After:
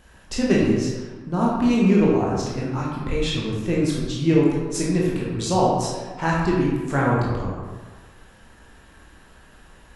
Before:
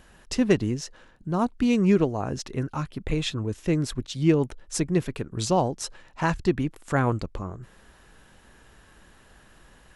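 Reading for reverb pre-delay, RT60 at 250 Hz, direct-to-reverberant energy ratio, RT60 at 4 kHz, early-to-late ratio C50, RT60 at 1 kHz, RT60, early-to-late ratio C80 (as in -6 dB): 17 ms, 1.4 s, -4.5 dB, 0.80 s, -0.5 dB, 1.4 s, 1.4 s, 2.0 dB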